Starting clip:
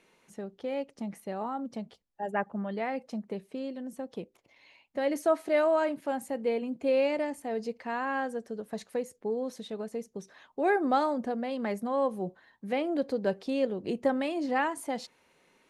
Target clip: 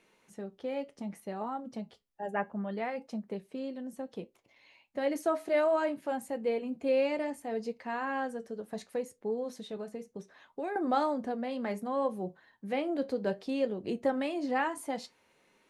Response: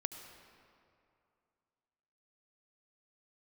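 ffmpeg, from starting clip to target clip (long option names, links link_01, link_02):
-filter_complex "[0:a]asettb=1/sr,asplit=3[link_01][link_02][link_03];[link_01]atrim=end=9.764[link_04];[link_02]atrim=start=9.76:end=10.76,asetpts=PTS-STARTPTS,afade=type=in:duration=0.004:curve=qsin,afade=type=out:start_time=0.996:duration=0.004:curve=qsin,acrossover=split=1300|2600[link_05][link_06][link_07];[link_05]acompressor=threshold=-33dB:ratio=4[link_08];[link_06]acompressor=threshold=-49dB:ratio=4[link_09];[link_07]acompressor=threshold=-60dB:ratio=4[link_10];[link_08][link_09][link_10]amix=inputs=3:normalize=0[link_11];[link_03]atrim=start=10.756[link_12];[link_04][link_11]acrossfade=duration=0.004:curve1=hsin:curve2=qsin[link_13];[link_13][link_12]acrossfade=duration=0.004:curve1=qsin:curve2=hsin,flanger=delay=8.8:depth=3.2:regen=-65:speed=0.65:shape=triangular,volume=2dB"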